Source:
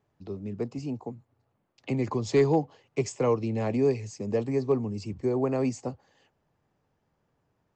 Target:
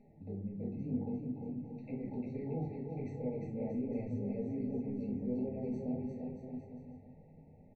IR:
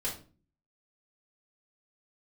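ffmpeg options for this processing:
-filter_complex "[0:a]lowpass=1600,equalizer=frequency=200:width=2.7:gain=10,areverse,acompressor=threshold=-35dB:ratio=16,areverse,alimiter=level_in=13.5dB:limit=-24dB:level=0:latency=1:release=11,volume=-13.5dB,acompressor=mode=upward:threshold=-56dB:ratio=2.5,flanger=delay=4.7:depth=4.4:regen=-49:speed=1.4:shape=triangular,aecho=1:1:350|630|854|1033|1177:0.631|0.398|0.251|0.158|0.1[link_01];[1:a]atrim=start_sample=2205[link_02];[link_01][link_02]afir=irnorm=-1:irlink=0,afftfilt=real='re*eq(mod(floor(b*sr/1024/920),2),0)':imag='im*eq(mod(floor(b*sr/1024/920),2),0)':win_size=1024:overlap=0.75,volume=2.5dB"

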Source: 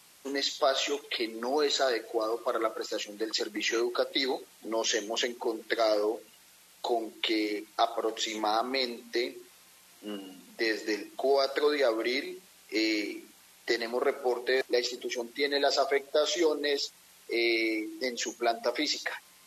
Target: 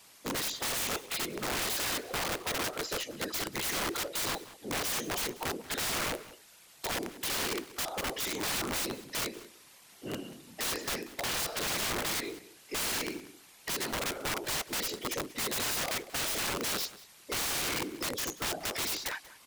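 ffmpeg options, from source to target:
ffmpeg -i in.wav -filter_complex "[0:a]aeval=exprs='(tanh(5.62*val(0)+0.45)-tanh(0.45))/5.62':channel_layout=same,afftfilt=real='hypot(re,im)*cos(2*PI*random(0))':imag='hypot(re,im)*sin(2*PI*random(1))':win_size=512:overlap=0.75,aeval=exprs='(mod(59.6*val(0)+1,2)-1)/59.6':channel_layout=same,asplit=2[link_01][link_02];[link_02]adelay=186.6,volume=-17dB,highshelf=frequency=4000:gain=-4.2[link_03];[link_01][link_03]amix=inputs=2:normalize=0,volume=8dB" out.wav

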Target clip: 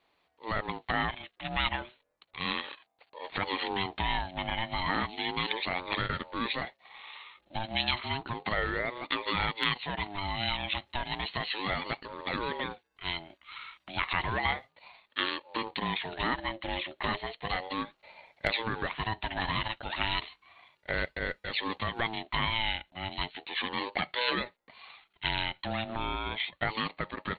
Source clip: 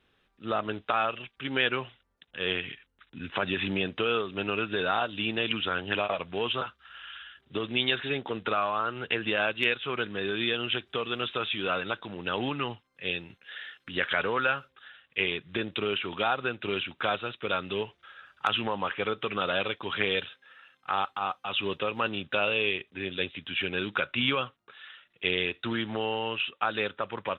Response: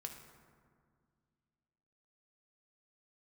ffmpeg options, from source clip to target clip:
-filter_complex "[0:a]asplit=3[link_01][link_02][link_03];[link_01]afade=type=out:start_time=15.98:duration=0.02[link_04];[link_02]asubboost=boost=6.5:cutoff=98,afade=type=in:start_time=15.98:duration=0.02,afade=type=out:start_time=17.72:duration=0.02[link_05];[link_03]afade=type=in:start_time=17.72:duration=0.02[link_06];[link_04][link_05][link_06]amix=inputs=3:normalize=0,aeval=exprs='val(0)*sin(2*PI*590*n/s+590*0.25/0.33*sin(2*PI*0.33*n/s))':channel_layout=same"

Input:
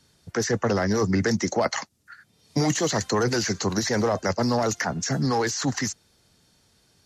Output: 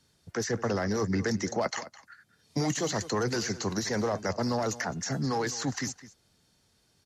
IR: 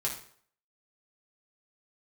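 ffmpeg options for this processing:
-filter_complex "[0:a]asplit=2[link_01][link_02];[link_02]adelay=209.9,volume=-16dB,highshelf=frequency=4000:gain=-4.72[link_03];[link_01][link_03]amix=inputs=2:normalize=0,volume=-6dB"

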